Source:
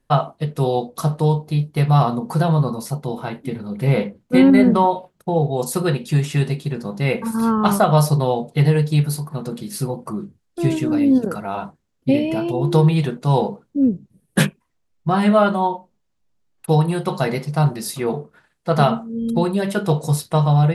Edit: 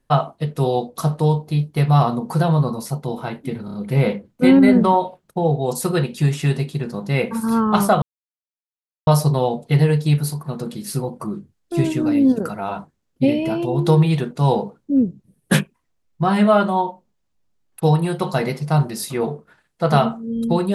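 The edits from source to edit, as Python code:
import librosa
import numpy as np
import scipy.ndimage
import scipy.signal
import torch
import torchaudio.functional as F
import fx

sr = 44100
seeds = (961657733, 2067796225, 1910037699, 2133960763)

y = fx.edit(x, sr, fx.stutter(start_s=3.65, slice_s=0.03, count=4),
    fx.insert_silence(at_s=7.93, length_s=1.05), tone=tone)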